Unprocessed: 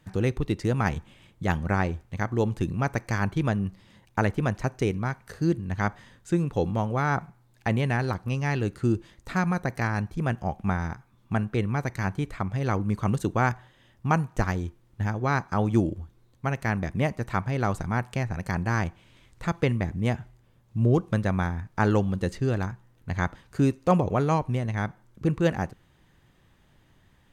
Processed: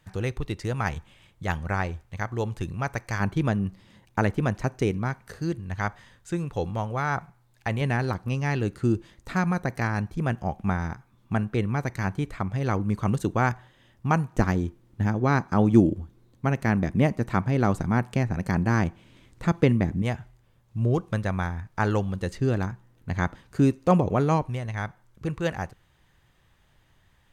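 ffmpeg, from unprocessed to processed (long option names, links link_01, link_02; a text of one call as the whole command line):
ffmpeg -i in.wav -af "asetnsamples=nb_out_samples=441:pad=0,asendcmd='3.2 equalizer g 1.5;5.4 equalizer g -6;7.81 equalizer g 1;14.33 equalizer g 7;20.02 equalizer g -4;22.39 equalizer g 2.5;24.47 equalizer g -7.5',equalizer=frequency=250:width_type=o:width=1.8:gain=-7" out.wav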